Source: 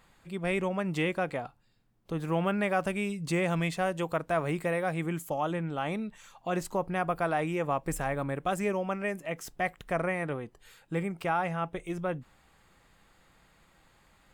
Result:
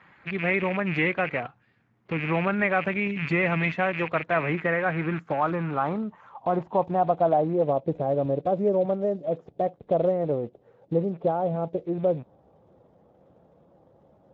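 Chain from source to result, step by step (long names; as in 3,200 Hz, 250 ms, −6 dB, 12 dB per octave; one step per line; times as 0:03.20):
loose part that buzzes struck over −46 dBFS, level −28 dBFS
in parallel at +1.5 dB: downward compressor 6 to 1, threshold −38 dBFS, peak gain reduction 14 dB
on the sum: low-pass filter sweep 2,100 Hz → 570 Hz, 0:04.33–0:07.78
Speex 13 kbit/s 16,000 Hz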